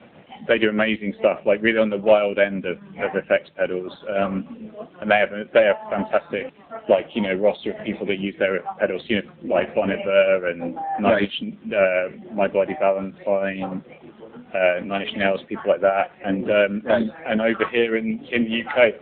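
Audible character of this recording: tremolo triangle 6.7 Hz, depth 60%; a quantiser's noise floor 10-bit, dither none; AMR-NB

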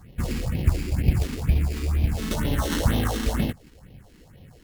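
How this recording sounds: aliases and images of a low sample rate 2.4 kHz, jitter 0%; phasing stages 4, 2.1 Hz, lowest notch 100–1400 Hz; Opus

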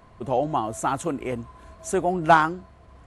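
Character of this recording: noise floor -52 dBFS; spectral tilt -5.0 dB/octave

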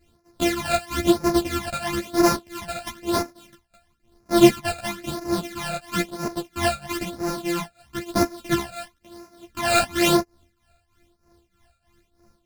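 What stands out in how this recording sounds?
a buzz of ramps at a fixed pitch in blocks of 128 samples; phasing stages 12, 1 Hz, lowest notch 320–3200 Hz; tremolo triangle 3.2 Hz, depth 85%; a shimmering, thickened sound

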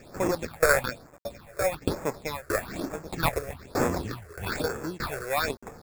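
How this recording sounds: aliases and images of a low sample rate 3 kHz, jitter 0%; tremolo saw down 1.6 Hz, depth 95%; a quantiser's noise floor 10-bit, dither none; phasing stages 6, 1.1 Hz, lowest notch 220–4100 Hz

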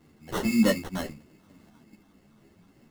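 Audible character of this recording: a quantiser's noise floor 12-bit, dither triangular; phasing stages 4, 3.3 Hz, lowest notch 590–1300 Hz; aliases and images of a low sample rate 2.4 kHz, jitter 0%; a shimmering, thickened sound

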